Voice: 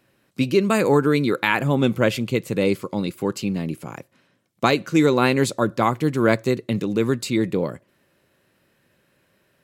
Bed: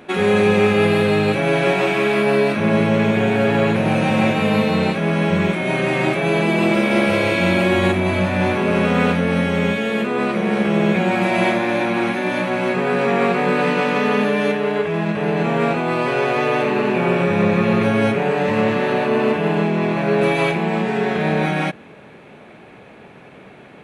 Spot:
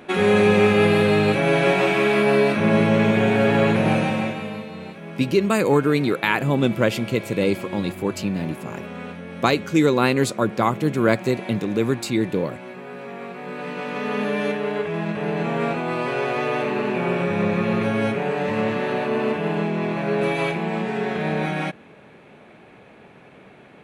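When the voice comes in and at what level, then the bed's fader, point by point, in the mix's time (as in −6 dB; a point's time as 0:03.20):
4.80 s, −0.5 dB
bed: 0:03.92 −1 dB
0:04.68 −17.5 dB
0:13.31 −17.5 dB
0:14.33 −5 dB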